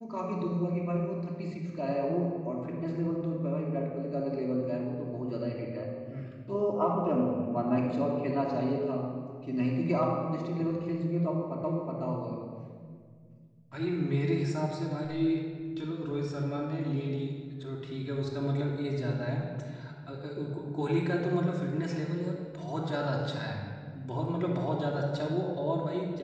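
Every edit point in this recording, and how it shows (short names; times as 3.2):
11.64 repeat of the last 0.37 s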